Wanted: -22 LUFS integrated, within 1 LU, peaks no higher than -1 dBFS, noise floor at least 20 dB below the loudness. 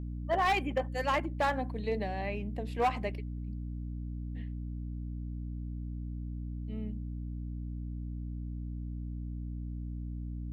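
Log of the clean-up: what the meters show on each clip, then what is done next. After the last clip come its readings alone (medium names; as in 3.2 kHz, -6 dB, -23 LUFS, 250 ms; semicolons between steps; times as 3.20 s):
clipped samples 0.5%; clipping level -22.5 dBFS; hum 60 Hz; highest harmonic 300 Hz; hum level -36 dBFS; loudness -36.0 LUFS; peak level -22.5 dBFS; loudness target -22.0 LUFS
-> clip repair -22.5 dBFS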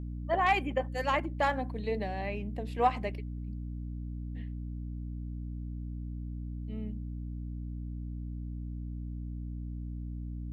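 clipped samples 0.0%; hum 60 Hz; highest harmonic 300 Hz; hum level -35 dBFS
-> de-hum 60 Hz, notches 5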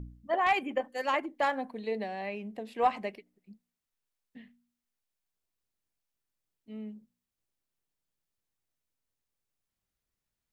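hum not found; loudness -32.0 LUFS; peak level -13.5 dBFS; loudness target -22.0 LUFS
-> trim +10 dB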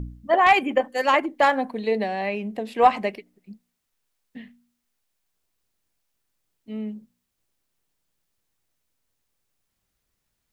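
loudness -22.0 LUFS; peak level -3.5 dBFS; noise floor -78 dBFS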